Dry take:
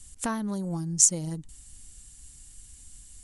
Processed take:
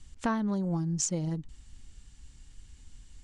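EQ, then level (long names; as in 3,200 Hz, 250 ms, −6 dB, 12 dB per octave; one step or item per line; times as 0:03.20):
high-frequency loss of the air 160 metres
+1.5 dB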